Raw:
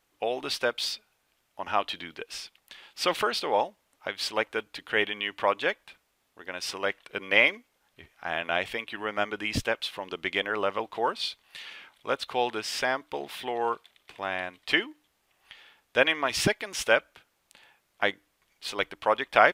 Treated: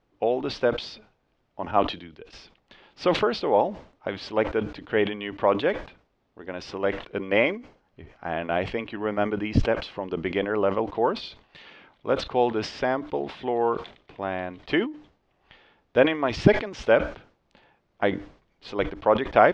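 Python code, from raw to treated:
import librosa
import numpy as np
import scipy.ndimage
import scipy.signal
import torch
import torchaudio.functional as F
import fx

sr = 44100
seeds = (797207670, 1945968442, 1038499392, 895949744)

y = fx.band_widen(x, sr, depth_pct=100, at=(1.71, 2.33))
y = fx.notch(y, sr, hz=3600.0, q=12.0, at=(7.21, 10.9))
y = scipy.signal.sosfilt(scipy.signal.butter(4, 5600.0, 'lowpass', fs=sr, output='sos'), y)
y = fx.tilt_shelf(y, sr, db=9.5, hz=970.0)
y = fx.sustainer(y, sr, db_per_s=130.0)
y = y * 10.0 ** (1.0 / 20.0)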